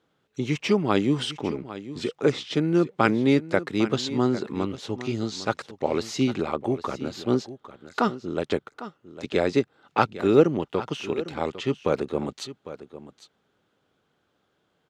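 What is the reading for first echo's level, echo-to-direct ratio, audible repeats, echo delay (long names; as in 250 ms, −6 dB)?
−14.5 dB, −14.5 dB, 1, 803 ms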